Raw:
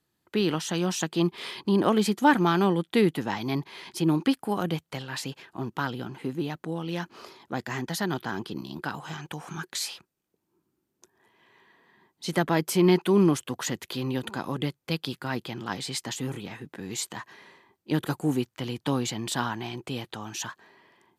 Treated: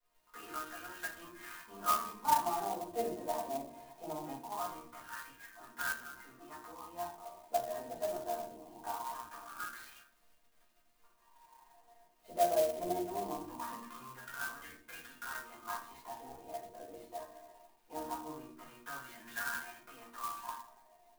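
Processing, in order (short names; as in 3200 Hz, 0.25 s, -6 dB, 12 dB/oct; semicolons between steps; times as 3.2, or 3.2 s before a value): octaver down 1 oct, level +1 dB; 3.01–4.1 dynamic EQ 1100 Hz, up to +7 dB, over -46 dBFS, Q 1.8; in parallel at +2 dB: compressor, threshold -34 dBFS, peak gain reduction 19 dB; on the sum: wah 0.22 Hz 610–1600 Hz, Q 6.7; crackle 92/s -49 dBFS; flange 0.12 Hz, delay 1.8 ms, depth 6.1 ms, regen -70%; resonator bank A#3 sus4, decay 0.2 s; 13.51–14.11 small resonant body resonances 220/1100/1700 Hz, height 11 dB, ringing for 45 ms; reverb RT60 0.50 s, pre-delay 4 ms, DRR -7.5 dB; clock jitter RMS 0.049 ms; gain +8.5 dB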